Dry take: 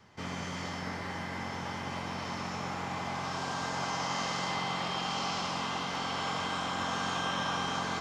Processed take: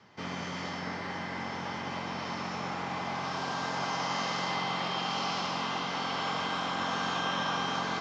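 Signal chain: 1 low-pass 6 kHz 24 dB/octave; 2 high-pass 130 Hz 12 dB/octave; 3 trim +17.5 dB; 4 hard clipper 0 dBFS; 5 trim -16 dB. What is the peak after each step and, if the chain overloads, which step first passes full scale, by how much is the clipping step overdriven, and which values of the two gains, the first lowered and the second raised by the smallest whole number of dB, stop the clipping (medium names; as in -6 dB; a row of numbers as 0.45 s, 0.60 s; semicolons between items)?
-21.0 dBFS, -20.5 dBFS, -3.0 dBFS, -3.0 dBFS, -19.0 dBFS; nothing clips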